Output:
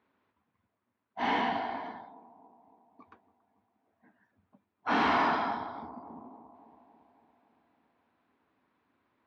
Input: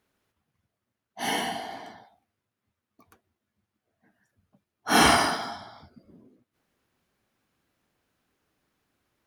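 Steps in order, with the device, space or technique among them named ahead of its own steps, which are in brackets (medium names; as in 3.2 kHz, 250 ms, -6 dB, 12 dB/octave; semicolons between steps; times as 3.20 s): analogue delay pedal into a guitar amplifier (bucket-brigade echo 279 ms, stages 2048, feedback 61%, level -20 dB; valve stage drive 29 dB, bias 0.6; cabinet simulation 100–3400 Hz, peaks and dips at 140 Hz -8 dB, 260 Hz +5 dB, 990 Hz +8 dB, 3 kHz -5 dB); trim +3.5 dB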